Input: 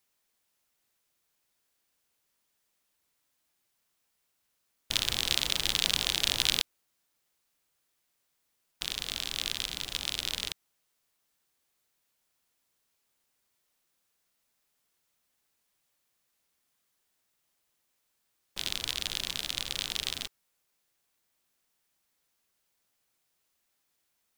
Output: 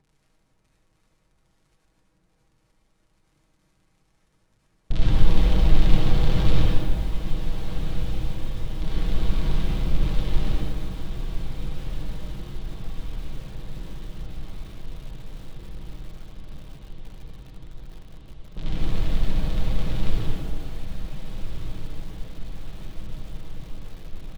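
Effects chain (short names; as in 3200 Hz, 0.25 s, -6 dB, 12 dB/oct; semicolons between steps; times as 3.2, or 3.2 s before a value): RIAA curve playback; vibrato 3.3 Hz 40 cents; tilt shelf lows +8.5 dB, about 1200 Hz; de-hum 305.2 Hz, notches 6; crackle 52/s -55 dBFS; LPF 11000 Hz 24 dB/oct; comb 6.3 ms, depth 53%; diffused feedback echo 1.548 s, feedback 72%, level -9 dB; reverb RT60 1.5 s, pre-delay 58 ms, DRR -7 dB; upward compressor, threshold -53 dBFS; lo-fi delay 0.15 s, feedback 35%, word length 6-bit, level -10 dB; gain -5 dB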